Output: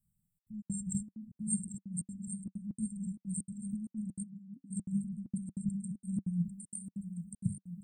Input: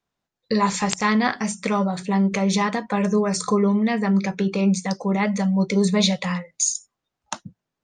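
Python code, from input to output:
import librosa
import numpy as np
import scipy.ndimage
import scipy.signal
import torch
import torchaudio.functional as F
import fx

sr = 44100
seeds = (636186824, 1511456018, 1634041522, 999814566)

p1 = fx.hum_notches(x, sr, base_hz=50, count=5)
p2 = fx.over_compress(p1, sr, threshold_db=-32.0, ratio=-1.0)
p3 = fx.brickwall_bandstop(p2, sr, low_hz=220.0, high_hz=7500.0)
p4 = fx.low_shelf(p3, sr, hz=480.0, db=-9.0, at=(1.68, 2.46))
p5 = p4 + fx.echo_swing(p4, sr, ms=1324, ratio=1.5, feedback_pct=35, wet_db=-10.0, dry=0)
p6 = fx.step_gate(p5, sr, bpm=194, pattern='xxxxx.xx.', floor_db=-60.0, edge_ms=4.5)
p7 = fx.dynamic_eq(p6, sr, hz=190.0, q=7.7, threshold_db=-44.0, ratio=4.0, max_db=-5)
p8 = fx.vowel_filter(p7, sr, vowel='i', at=(4.22, 4.7), fade=0.02)
y = p8 * 10.0 ** (1.0 / 20.0)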